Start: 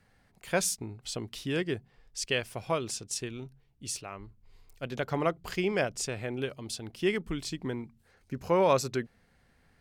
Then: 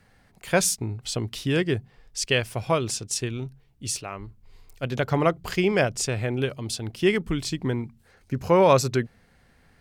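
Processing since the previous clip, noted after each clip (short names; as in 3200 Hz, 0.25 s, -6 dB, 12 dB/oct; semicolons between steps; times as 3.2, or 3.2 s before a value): dynamic EQ 110 Hz, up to +6 dB, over -50 dBFS, Q 1.5; gain +6.5 dB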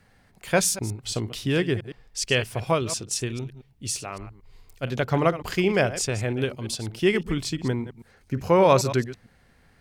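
reverse delay 0.113 s, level -13.5 dB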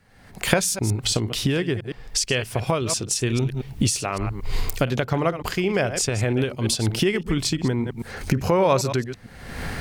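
recorder AGC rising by 48 dB/s; gain -1.5 dB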